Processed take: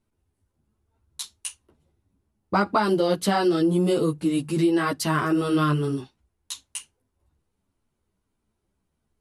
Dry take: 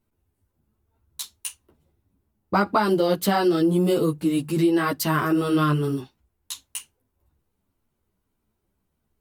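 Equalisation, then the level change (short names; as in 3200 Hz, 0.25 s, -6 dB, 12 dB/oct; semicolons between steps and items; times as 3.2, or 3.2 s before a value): elliptic low-pass 11000 Hz, stop band 80 dB; 0.0 dB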